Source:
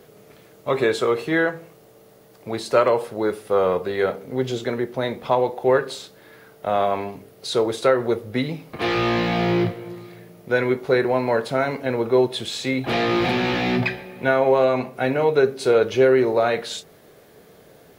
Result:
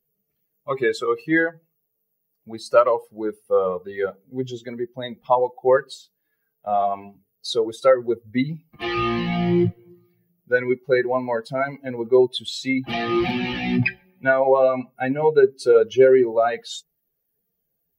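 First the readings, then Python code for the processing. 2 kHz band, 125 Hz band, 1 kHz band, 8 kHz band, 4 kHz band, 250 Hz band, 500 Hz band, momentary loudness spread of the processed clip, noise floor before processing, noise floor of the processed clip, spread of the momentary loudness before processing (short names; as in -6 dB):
-0.5 dB, -1.5 dB, -0.5 dB, n/a, -2.5 dB, -0.5 dB, 0.0 dB, 14 LU, -50 dBFS, -76 dBFS, 11 LU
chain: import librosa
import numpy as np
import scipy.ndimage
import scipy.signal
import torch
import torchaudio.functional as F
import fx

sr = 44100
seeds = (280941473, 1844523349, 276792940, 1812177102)

y = fx.bin_expand(x, sr, power=2.0)
y = fx.high_shelf(y, sr, hz=9200.0, db=-10.0)
y = y * 10.0 ** (5.0 / 20.0)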